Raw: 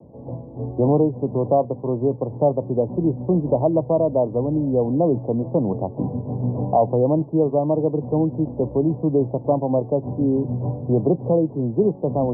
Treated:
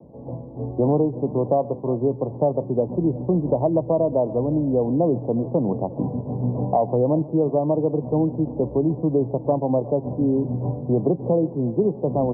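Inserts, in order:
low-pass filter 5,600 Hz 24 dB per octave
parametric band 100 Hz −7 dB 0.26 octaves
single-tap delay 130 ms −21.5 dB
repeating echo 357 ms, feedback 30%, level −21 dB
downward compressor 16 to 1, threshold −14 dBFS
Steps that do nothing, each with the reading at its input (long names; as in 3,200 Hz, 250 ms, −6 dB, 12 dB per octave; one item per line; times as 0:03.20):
low-pass filter 5,600 Hz: nothing at its input above 1,000 Hz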